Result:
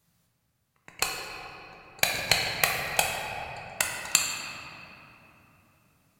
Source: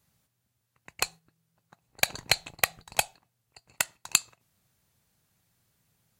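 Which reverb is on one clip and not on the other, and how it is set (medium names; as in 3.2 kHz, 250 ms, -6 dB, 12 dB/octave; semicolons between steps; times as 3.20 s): simulated room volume 210 m³, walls hard, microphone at 0.57 m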